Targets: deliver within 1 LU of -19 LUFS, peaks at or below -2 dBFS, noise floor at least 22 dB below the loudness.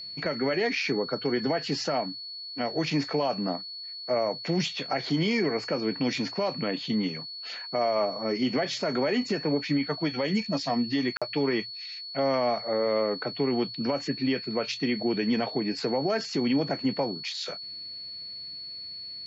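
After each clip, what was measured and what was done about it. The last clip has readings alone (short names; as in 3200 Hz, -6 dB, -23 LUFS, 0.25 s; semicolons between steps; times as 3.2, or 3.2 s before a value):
dropouts 1; longest dropout 46 ms; steady tone 4400 Hz; tone level -37 dBFS; loudness -28.5 LUFS; peak -16.5 dBFS; loudness target -19.0 LUFS
-> interpolate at 11.17, 46 ms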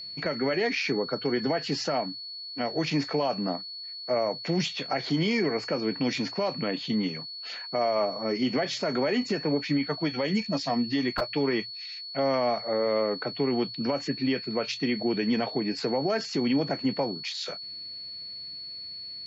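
dropouts 0; steady tone 4400 Hz; tone level -37 dBFS
-> notch 4400 Hz, Q 30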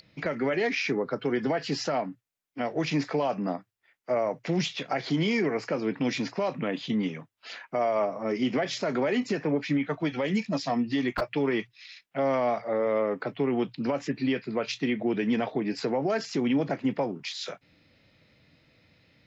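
steady tone none; loudness -29.0 LUFS; peak -17.0 dBFS; loudness target -19.0 LUFS
-> gain +10 dB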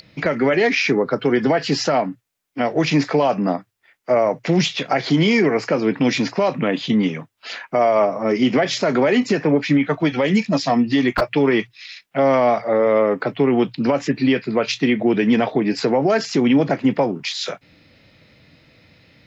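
loudness -19.0 LUFS; peak -7.0 dBFS; noise floor -64 dBFS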